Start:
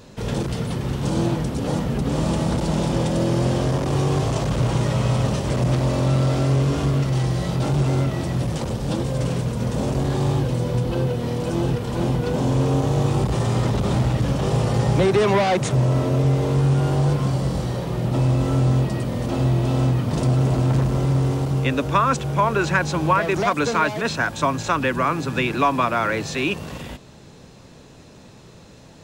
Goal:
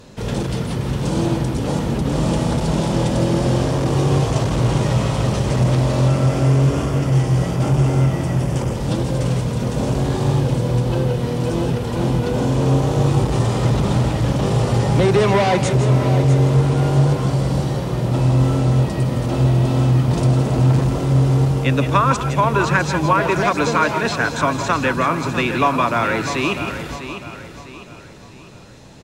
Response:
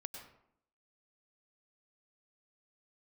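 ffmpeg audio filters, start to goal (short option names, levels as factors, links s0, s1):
-filter_complex "[0:a]asettb=1/sr,asplit=3[s0][s1][s2];[s0]atrim=end=6.084[s3];[s1]atrim=start=6.08:end=8.76,asetpts=PTS-STARTPTS,afade=t=in:d=0.004:c=qsin,afade=t=out:st=2.676:d=0.004:c=qsin,equalizer=f=4000:w=4.4:g=-11.5[s4];[s2]atrim=start=8.756[s5];[s3][s4]acrossfade=d=0.004:c1=hsin:c2=qsin[s6];[s6][s5]acrossfade=d=0.004:c1=qsin:c2=hsin,aecho=1:1:651|1302|1953|2604:0.299|0.119|0.0478|0.0191[s7];[1:a]atrim=start_sample=2205,afade=t=out:st=0.15:d=0.01,atrim=end_sample=7056,asetrate=26019,aresample=44100[s8];[s7][s8]afir=irnorm=-1:irlink=0,volume=1.58"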